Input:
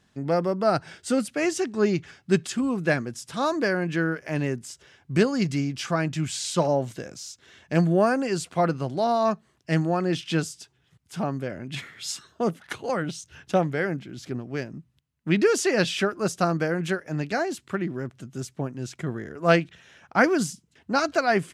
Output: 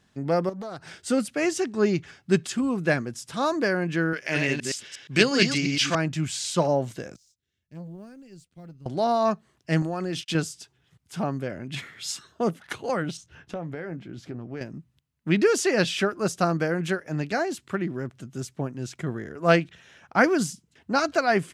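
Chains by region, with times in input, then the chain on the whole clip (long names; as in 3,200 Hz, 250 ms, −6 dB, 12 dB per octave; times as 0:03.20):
0:00.49–0:01.02: high-shelf EQ 4,900 Hz +5.5 dB + downward compressor 12 to 1, threshold −32 dBFS + highs frequency-modulated by the lows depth 0.41 ms
0:04.13–0:05.95: delay that plays each chunk backwards 118 ms, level −3 dB + meter weighting curve D
0:07.16–0:08.86: mu-law and A-law mismatch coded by A + guitar amp tone stack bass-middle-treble 10-0-1 + saturating transformer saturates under 340 Hz
0:09.82–0:10.35: high-shelf EQ 4,600 Hz +6.5 dB + downward compressor, threshold −25 dBFS + noise gate −39 dBFS, range −35 dB
0:13.17–0:14.61: downward compressor 5 to 1, threshold −30 dBFS + high-shelf EQ 3,200 Hz −11 dB + double-tracking delay 18 ms −13 dB
whole clip: no processing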